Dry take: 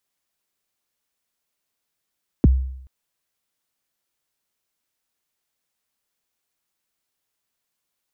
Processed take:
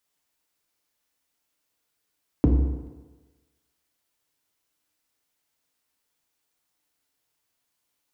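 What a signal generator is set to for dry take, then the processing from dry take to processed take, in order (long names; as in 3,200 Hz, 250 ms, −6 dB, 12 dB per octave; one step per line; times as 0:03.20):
synth kick length 0.43 s, from 380 Hz, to 65 Hz, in 23 ms, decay 0.73 s, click off, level −7.5 dB
downward compressor, threshold −18 dBFS
feedback delay network reverb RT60 1.3 s, low-frequency decay 0.85×, high-frequency decay 0.75×, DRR 2 dB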